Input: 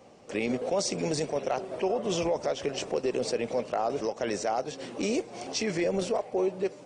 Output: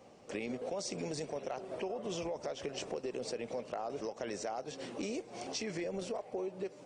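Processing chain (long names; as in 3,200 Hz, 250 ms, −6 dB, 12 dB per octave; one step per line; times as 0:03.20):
downward compressor 4 to 1, threshold −32 dBFS, peak gain reduction 8 dB
level −4 dB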